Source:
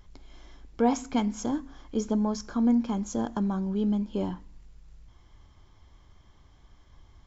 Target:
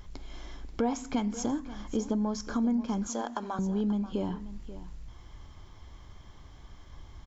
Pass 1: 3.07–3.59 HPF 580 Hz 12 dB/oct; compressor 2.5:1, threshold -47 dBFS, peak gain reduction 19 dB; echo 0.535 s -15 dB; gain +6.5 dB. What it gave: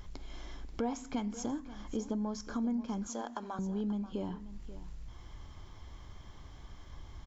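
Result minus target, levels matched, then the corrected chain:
compressor: peak gain reduction +5.5 dB
3.07–3.59 HPF 580 Hz 12 dB/oct; compressor 2.5:1, threshold -37.5 dBFS, peak gain reduction 13 dB; echo 0.535 s -15 dB; gain +6.5 dB

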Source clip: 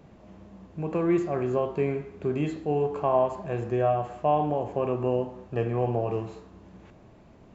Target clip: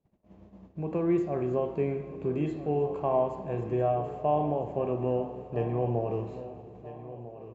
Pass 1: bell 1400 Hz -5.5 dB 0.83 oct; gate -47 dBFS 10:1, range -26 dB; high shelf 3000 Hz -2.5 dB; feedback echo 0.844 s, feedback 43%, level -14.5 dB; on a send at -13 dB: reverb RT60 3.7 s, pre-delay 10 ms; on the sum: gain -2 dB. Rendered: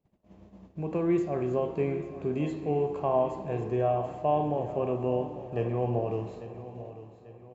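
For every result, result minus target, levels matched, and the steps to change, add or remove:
echo 0.454 s early; 8000 Hz band +5.5 dB
change: feedback echo 1.298 s, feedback 43%, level -14.5 dB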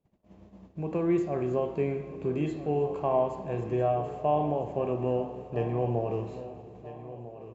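8000 Hz band +5.5 dB
change: high shelf 3000 Hz -9.5 dB

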